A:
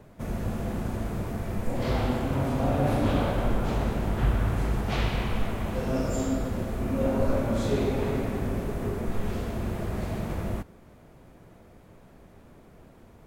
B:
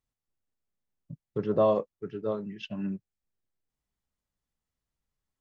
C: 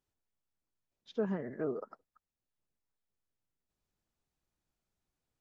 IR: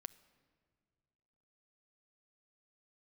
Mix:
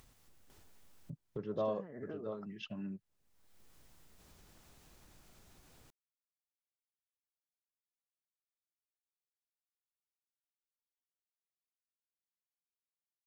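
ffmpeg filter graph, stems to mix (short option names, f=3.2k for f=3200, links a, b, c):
-filter_complex "[1:a]volume=-12dB[a];[2:a]acompressor=threshold=-39dB:ratio=12,adelay=500,volume=-6dB[b];[a][b]amix=inputs=2:normalize=0,acompressor=mode=upward:threshold=-37dB:ratio=2.5"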